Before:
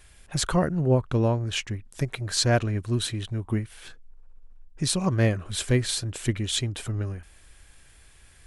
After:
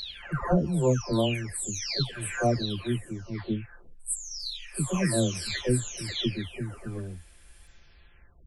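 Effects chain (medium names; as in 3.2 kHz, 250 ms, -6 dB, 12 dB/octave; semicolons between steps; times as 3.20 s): delay that grows with frequency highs early, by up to 791 ms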